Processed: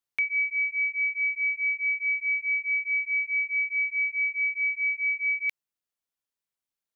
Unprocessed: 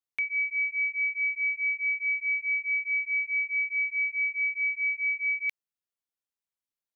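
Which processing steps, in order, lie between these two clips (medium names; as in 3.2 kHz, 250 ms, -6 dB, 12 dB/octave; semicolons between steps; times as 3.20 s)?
gain riding; trim +1.5 dB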